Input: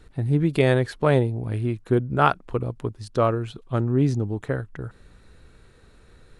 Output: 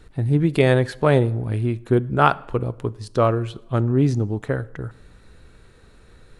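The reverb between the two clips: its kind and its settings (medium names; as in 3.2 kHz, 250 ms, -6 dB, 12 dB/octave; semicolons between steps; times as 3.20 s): plate-style reverb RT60 0.88 s, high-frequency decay 0.75×, DRR 18.5 dB; trim +2.5 dB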